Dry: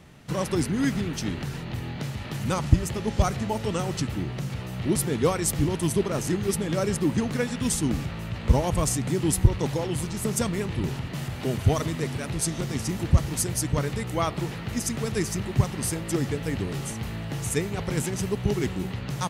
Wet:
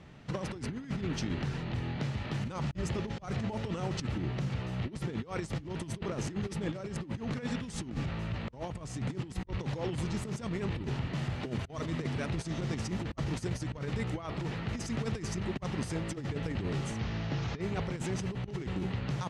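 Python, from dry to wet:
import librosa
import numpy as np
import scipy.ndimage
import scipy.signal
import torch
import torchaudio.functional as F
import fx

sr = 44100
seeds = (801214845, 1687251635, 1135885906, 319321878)

y = fx.delta_mod(x, sr, bps=32000, step_db=-36.0, at=(16.99, 17.61))
y = fx.over_compress(y, sr, threshold_db=-29.0, ratio=-0.5)
y = fx.air_absorb(y, sr, metres=100.0)
y = F.gain(torch.from_numpy(y), -5.0).numpy()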